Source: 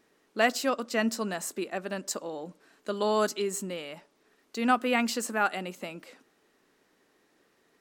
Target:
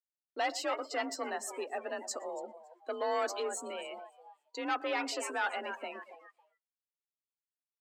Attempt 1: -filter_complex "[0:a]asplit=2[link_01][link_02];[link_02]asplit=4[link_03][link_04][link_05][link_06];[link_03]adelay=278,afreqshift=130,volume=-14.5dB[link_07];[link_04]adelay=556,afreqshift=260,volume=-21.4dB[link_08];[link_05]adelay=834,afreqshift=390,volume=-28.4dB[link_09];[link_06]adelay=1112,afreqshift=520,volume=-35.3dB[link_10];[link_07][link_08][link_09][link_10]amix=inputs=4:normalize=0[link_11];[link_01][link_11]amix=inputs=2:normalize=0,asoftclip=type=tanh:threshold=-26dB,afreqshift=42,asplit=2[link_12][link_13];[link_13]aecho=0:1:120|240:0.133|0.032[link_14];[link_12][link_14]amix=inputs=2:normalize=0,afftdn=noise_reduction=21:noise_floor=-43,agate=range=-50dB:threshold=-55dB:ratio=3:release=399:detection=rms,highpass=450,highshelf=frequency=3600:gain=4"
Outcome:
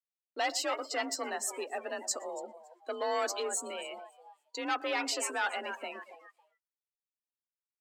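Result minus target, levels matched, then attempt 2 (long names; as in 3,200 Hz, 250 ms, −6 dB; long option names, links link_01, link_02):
8,000 Hz band +5.0 dB
-filter_complex "[0:a]asplit=2[link_01][link_02];[link_02]asplit=4[link_03][link_04][link_05][link_06];[link_03]adelay=278,afreqshift=130,volume=-14.5dB[link_07];[link_04]adelay=556,afreqshift=260,volume=-21.4dB[link_08];[link_05]adelay=834,afreqshift=390,volume=-28.4dB[link_09];[link_06]adelay=1112,afreqshift=520,volume=-35.3dB[link_10];[link_07][link_08][link_09][link_10]amix=inputs=4:normalize=0[link_11];[link_01][link_11]amix=inputs=2:normalize=0,asoftclip=type=tanh:threshold=-26dB,afreqshift=42,asplit=2[link_12][link_13];[link_13]aecho=0:1:120|240:0.133|0.032[link_14];[link_12][link_14]amix=inputs=2:normalize=0,afftdn=noise_reduction=21:noise_floor=-43,agate=range=-50dB:threshold=-55dB:ratio=3:release=399:detection=rms,highpass=450,highshelf=frequency=3600:gain=-4"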